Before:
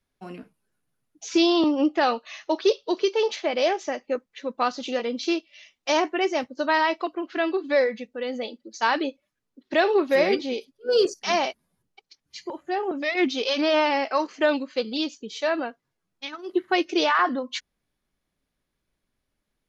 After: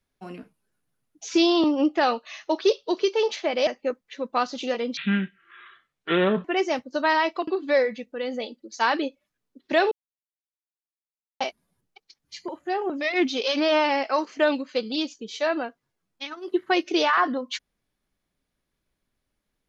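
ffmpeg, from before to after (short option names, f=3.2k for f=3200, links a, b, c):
-filter_complex "[0:a]asplit=7[a][b][c][d][e][f][g];[a]atrim=end=3.672[h];[b]atrim=start=3.918:end=5.224[i];[c]atrim=start=5.22:end=6.09,asetpts=PTS-STARTPTS,asetrate=26019,aresample=44100[j];[d]atrim=start=6.086:end=7.122[k];[e]atrim=start=7.488:end=9.93,asetpts=PTS-STARTPTS,afade=t=out:st=2.438:d=0.004:c=hsin[l];[f]atrim=start=9.93:end=11.42,asetpts=PTS-STARTPTS,volume=0[m];[g]atrim=start=11.42,asetpts=PTS-STARTPTS,afade=t=in:d=0.004:c=hsin[n];[h][i]acrossfade=d=0.004:c1=hsin:c2=hsin[o];[o][j]acrossfade=d=0.004:c1=hsin:c2=hsin[p];[p][k]acrossfade=d=0.004:c1=hsin:c2=hsin[q];[l][m][n]concat=n=3:v=0:a=1[r];[q][r]acrossfade=d=0.004:c1=hsin:c2=hsin"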